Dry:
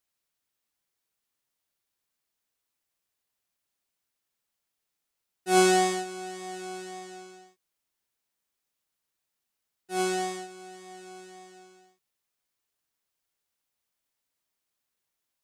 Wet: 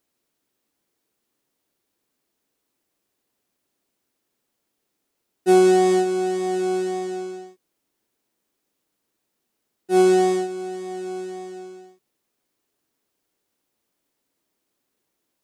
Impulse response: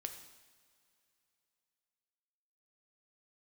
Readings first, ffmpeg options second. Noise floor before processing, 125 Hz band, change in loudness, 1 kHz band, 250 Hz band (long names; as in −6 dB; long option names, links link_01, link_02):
−84 dBFS, can't be measured, +7.0 dB, +4.5 dB, +11.0 dB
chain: -af "equalizer=frequency=310:width=0.68:gain=13.5,acompressor=threshold=-17dB:ratio=10,volume=5dB"